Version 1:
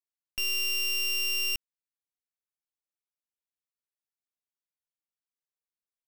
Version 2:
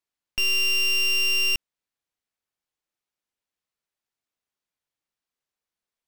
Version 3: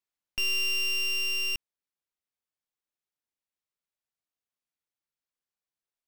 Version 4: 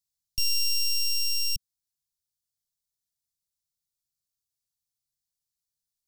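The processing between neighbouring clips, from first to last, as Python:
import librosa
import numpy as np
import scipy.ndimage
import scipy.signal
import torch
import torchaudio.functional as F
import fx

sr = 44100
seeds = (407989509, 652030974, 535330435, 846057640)

y1 = fx.high_shelf(x, sr, hz=7800.0, db=-10.5)
y1 = y1 * librosa.db_to_amplitude(8.5)
y2 = fx.rider(y1, sr, range_db=4, speed_s=2.0)
y2 = y2 * librosa.db_to_amplitude(-6.5)
y3 = scipy.signal.sosfilt(scipy.signal.cheby2(4, 70, [500.0, 1400.0], 'bandstop', fs=sr, output='sos'), y2)
y3 = y3 * librosa.db_to_amplitude(7.5)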